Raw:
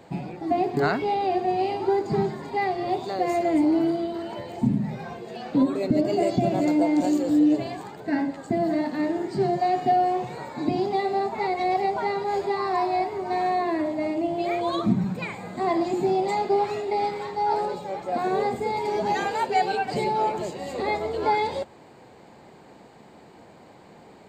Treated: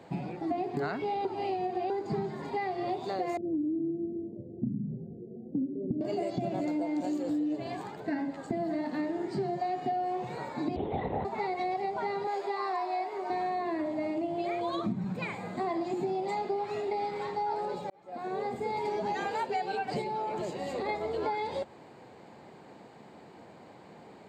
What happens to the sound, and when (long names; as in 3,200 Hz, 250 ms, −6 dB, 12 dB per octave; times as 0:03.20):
0:01.25–0:01.90: reverse
0:03.37–0:06.01: inverse Chebyshev low-pass filter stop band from 980 Hz, stop band 50 dB
0:10.76–0:11.25: linear-prediction vocoder at 8 kHz whisper
0:12.27–0:13.30: high-pass filter 440 Hz
0:17.90–0:18.91: fade in
0:20.01–0:20.89: downward compressor, threshold −26 dBFS
whole clip: high-pass filter 82 Hz; high-shelf EQ 6,700 Hz −7 dB; downward compressor, threshold −27 dBFS; level −2 dB